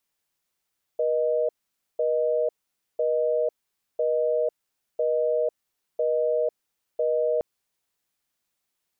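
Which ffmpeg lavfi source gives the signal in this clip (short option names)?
-f lavfi -i "aevalsrc='0.0668*(sin(2*PI*480*t)+sin(2*PI*620*t))*clip(min(mod(t,1),0.5-mod(t,1))/0.005,0,1)':d=6.42:s=44100"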